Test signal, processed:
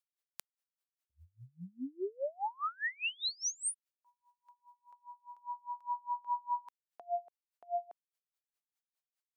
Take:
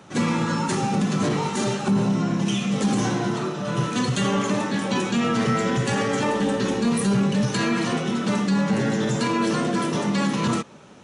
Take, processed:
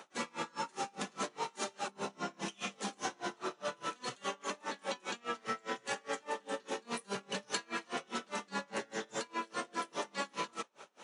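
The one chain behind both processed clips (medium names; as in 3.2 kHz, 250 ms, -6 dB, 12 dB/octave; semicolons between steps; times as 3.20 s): high-pass 510 Hz 12 dB/octave; compression 5:1, threshold -32 dBFS; logarithmic tremolo 4.9 Hz, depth 31 dB; trim +1 dB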